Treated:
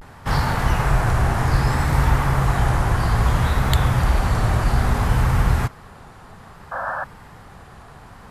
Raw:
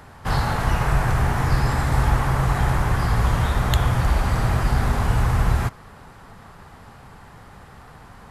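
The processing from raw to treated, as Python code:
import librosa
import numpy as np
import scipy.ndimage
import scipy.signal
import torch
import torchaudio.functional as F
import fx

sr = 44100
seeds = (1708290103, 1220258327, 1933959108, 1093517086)

y = fx.spec_paint(x, sr, seeds[0], shape='noise', start_s=6.7, length_s=0.35, low_hz=490.0, high_hz=1700.0, level_db=-28.0)
y = fx.vibrato(y, sr, rate_hz=0.61, depth_cents=92.0)
y = y * librosa.db_to_amplitude(1.5)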